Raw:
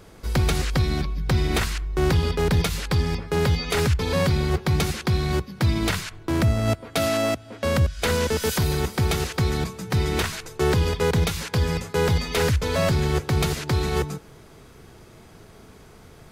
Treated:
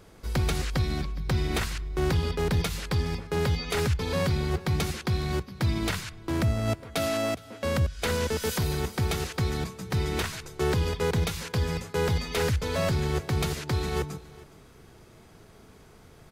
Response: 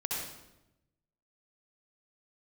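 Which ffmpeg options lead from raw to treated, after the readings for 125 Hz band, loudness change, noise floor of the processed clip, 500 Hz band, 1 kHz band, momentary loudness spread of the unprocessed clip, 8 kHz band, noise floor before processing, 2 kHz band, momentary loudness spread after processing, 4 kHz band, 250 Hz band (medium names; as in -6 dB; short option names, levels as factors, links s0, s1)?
-5.0 dB, -5.0 dB, -53 dBFS, -5.0 dB, -5.0 dB, 4 LU, -5.0 dB, -48 dBFS, -5.0 dB, 4 LU, -5.0 dB, -5.0 dB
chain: -af "aecho=1:1:414:0.0891,volume=0.562"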